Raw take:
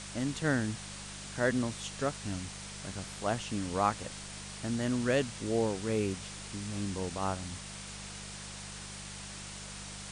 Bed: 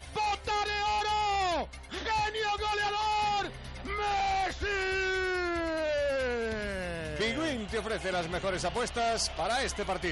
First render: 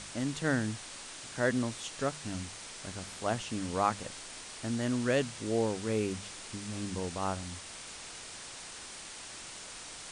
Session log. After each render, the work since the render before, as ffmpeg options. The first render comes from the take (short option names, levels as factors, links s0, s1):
-af "bandreject=f=50:t=h:w=4,bandreject=f=100:t=h:w=4,bandreject=f=150:t=h:w=4,bandreject=f=200:t=h:w=4"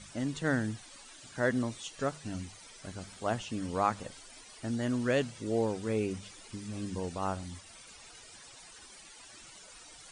-af "afftdn=nr=14:nf=-46"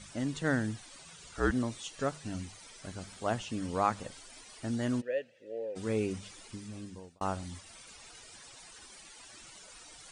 -filter_complex "[0:a]asettb=1/sr,asplit=3[s0][s1][s2];[s0]atrim=end=0.994[s3];[s1]atrim=start=0.99:end=1.51,asetpts=PTS-STARTPTS,afade=t=in:d=0.004:c=qsin,afade=t=out:st=0.516:d=0.004:c=qsin,afreqshift=-180[s4];[s2]atrim=start=1.506[s5];[s3][s4]acrossfade=d=0.004:c1=hsin:c2=qsin[s6];[s6][s5]acrossfade=d=0.004:c1=qsin:c2=hsin,asplit=3[s7][s8][s9];[s7]afade=t=out:st=5:d=0.02[s10];[s8]asplit=3[s11][s12][s13];[s11]bandpass=f=530:t=q:w=8,volume=1[s14];[s12]bandpass=f=1840:t=q:w=8,volume=0.501[s15];[s13]bandpass=f=2480:t=q:w=8,volume=0.355[s16];[s14][s15][s16]amix=inputs=3:normalize=0,afade=t=in:st=5:d=0.02,afade=t=out:st=5.75:d=0.02[s17];[s9]afade=t=in:st=5.75:d=0.02[s18];[s10][s17][s18]amix=inputs=3:normalize=0,asplit=2[s19][s20];[s19]atrim=end=7.21,asetpts=PTS-STARTPTS,afade=t=out:st=6.41:d=0.8[s21];[s20]atrim=start=7.21,asetpts=PTS-STARTPTS,afade=t=in:d=0.004:c=hsin[s22];[s21][s22]concat=n=2:v=0:a=1"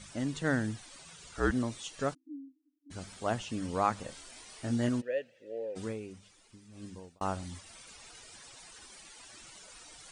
-filter_complex "[0:a]asplit=3[s0][s1][s2];[s0]afade=t=out:st=2.13:d=0.02[s3];[s1]asuperpass=centerf=290:order=12:qfactor=4.5,afade=t=in:st=2.13:d=0.02,afade=t=out:st=2.9:d=0.02[s4];[s2]afade=t=in:st=2.9:d=0.02[s5];[s3][s4][s5]amix=inputs=3:normalize=0,asettb=1/sr,asplit=3[s6][s7][s8];[s6]atrim=end=4.054[s9];[s7]atrim=start=4.05:end=4.89,asetpts=PTS-STARTPTS,afade=t=in:d=0.004:c=qsin,afade=t=out:st=0.836:d=0.004:c=qsin,asplit=2[s10][s11];[s11]adelay=25,volume=0.562[s12];[s10][s12]amix=inputs=2:normalize=0,atrim=end_sample=37044[s13];[s8]atrim=start=4.886[s14];[s9][s13]acrossfade=d=0.004:c1=hsin:c2=qsin[s15];[s15][s14]acrossfade=d=0.004:c1=qsin:c2=hsin,asplit=3[s16][s17][s18];[s16]atrim=end=6.02,asetpts=PTS-STARTPTS,afade=t=out:st=5.84:d=0.18:c=qua:silence=0.266073[s19];[s17]atrim=start=6.02:end=6.67,asetpts=PTS-STARTPTS,volume=0.266[s20];[s18]atrim=start=6.67,asetpts=PTS-STARTPTS,afade=t=in:d=0.18:c=qua:silence=0.266073[s21];[s19][s20][s21]concat=n=3:v=0:a=1"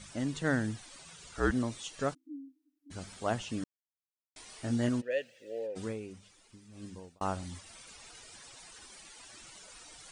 -filter_complex "[0:a]asplit=3[s0][s1][s2];[s0]afade=t=out:st=5.1:d=0.02[s3];[s1]highshelf=f=2600:g=12,afade=t=in:st=5.1:d=0.02,afade=t=out:st=5.66:d=0.02[s4];[s2]afade=t=in:st=5.66:d=0.02[s5];[s3][s4][s5]amix=inputs=3:normalize=0,asplit=3[s6][s7][s8];[s6]atrim=end=3.64,asetpts=PTS-STARTPTS,afade=t=out:st=3.636:d=0.004:c=hsin[s9];[s7]atrim=start=3.64:end=4.36,asetpts=PTS-STARTPTS,volume=0[s10];[s8]atrim=start=4.36,asetpts=PTS-STARTPTS,afade=t=in:d=0.004:c=hsin[s11];[s9][s10][s11]concat=n=3:v=0:a=1"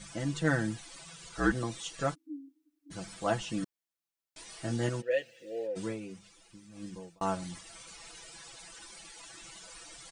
-af "aecho=1:1:6:0.83"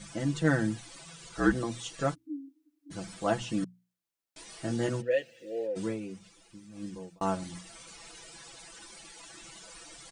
-af "equalizer=f=240:w=0.53:g=4,bandreject=f=60:t=h:w=6,bandreject=f=120:t=h:w=6,bandreject=f=180:t=h:w=6,bandreject=f=240:t=h:w=6"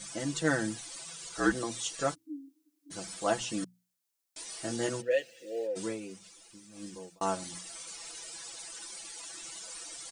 -af "bass=f=250:g=-9,treble=f=4000:g=8"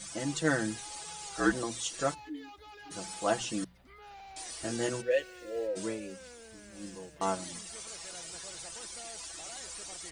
-filter_complex "[1:a]volume=0.0944[s0];[0:a][s0]amix=inputs=2:normalize=0"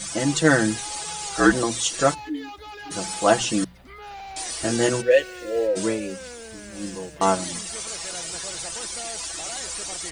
-af "volume=3.76,alimiter=limit=0.708:level=0:latency=1"